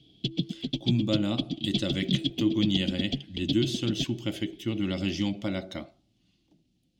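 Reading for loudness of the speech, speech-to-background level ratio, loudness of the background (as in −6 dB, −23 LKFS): −30.0 LKFS, 2.0 dB, −32.0 LKFS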